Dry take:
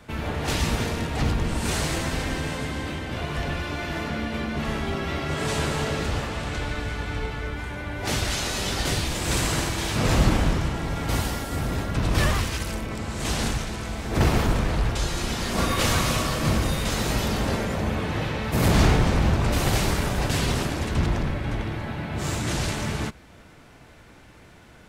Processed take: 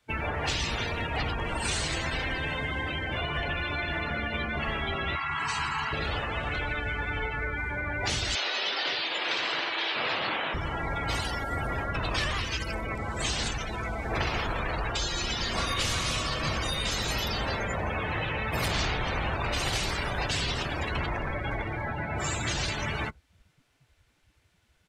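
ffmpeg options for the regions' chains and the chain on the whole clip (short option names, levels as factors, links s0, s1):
-filter_complex "[0:a]asettb=1/sr,asplit=3[s0][s1][s2];[s0]atrim=end=5.154[s3];[s1]atrim=start=5.15:end=5.93,asetpts=PTS-STARTPTS,afade=t=in:d=0.004:c=qsin,afade=t=out:st=0.776:d=0.004:c=qsin,lowshelf=f=730:t=q:w=3:g=-10.5,bandreject=f=3500:w=7.8[s4];[s2]atrim=start=5.926[s5];[s3][s4]acrossfade=d=0.004:c1=hsin:c2=qsin[s6];[s6][s5]acrossfade=d=0.004:c1=qsin:c2=hsin,asettb=1/sr,asplit=3[s7][s8][s9];[s7]atrim=end=8.354[s10];[s8]atrim=start=8.35:end=10.54,asetpts=PTS-STARTPTS,afade=t=in:d=0.004:c=qsin,afade=t=out:st=2.186:d=0.004:c=qsin,acontrast=40,highpass=580,lowpass=3600[s11];[s9]atrim=start=10.536[s12];[s10][s11]acrossfade=d=0.004:c1=hsin:c2=qsin[s13];[s13][s12]acrossfade=d=0.004:c1=qsin:c2=hsin,afftdn=nr=29:nf=-33,firequalizer=gain_entry='entry(200,0);entry(330,5);entry(3000,15)':delay=0.05:min_phase=1,acrossover=split=150|530[s14][s15][s16];[s14]acompressor=threshold=0.0224:ratio=4[s17];[s15]acompressor=threshold=0.00631:ratio=4[s18];[s16]acompressor=threshold=0.0282:ratio=4[s19];[s17][s18][s19]amix=inputs=3:normalize=0"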